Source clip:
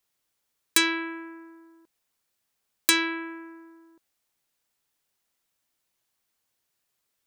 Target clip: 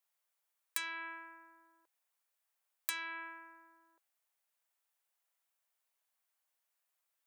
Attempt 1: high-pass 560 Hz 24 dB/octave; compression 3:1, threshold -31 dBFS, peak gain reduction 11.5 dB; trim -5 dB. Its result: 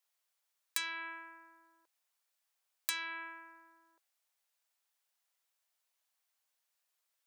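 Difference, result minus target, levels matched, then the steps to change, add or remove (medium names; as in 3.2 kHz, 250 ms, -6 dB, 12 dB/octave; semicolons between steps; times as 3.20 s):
4 kHz band +3.0 dB
add after compression: peaking EQ 4.8 kHz -5.5 dB 1.5 oct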